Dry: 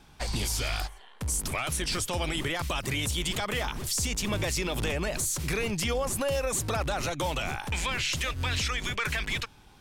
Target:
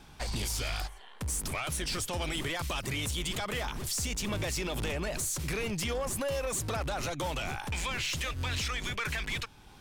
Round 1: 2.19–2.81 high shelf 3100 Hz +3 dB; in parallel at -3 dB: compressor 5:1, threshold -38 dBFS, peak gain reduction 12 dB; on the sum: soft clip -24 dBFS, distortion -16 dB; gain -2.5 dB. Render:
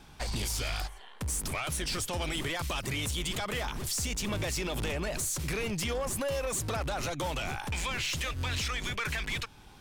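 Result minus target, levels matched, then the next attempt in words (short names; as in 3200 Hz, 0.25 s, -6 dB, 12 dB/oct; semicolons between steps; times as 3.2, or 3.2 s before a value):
compressor: peak gain reduction -5.5 dB
2.19–2.81 high shelf 3100 Hz +3 dB; in parallel at -3 dB: compressor 5:1, threshold -45 dBFS, peak gain reduction 17.5 dB; on the sum: soft clip -24 dBFS, distortion -16 dB; gain -2.5 dB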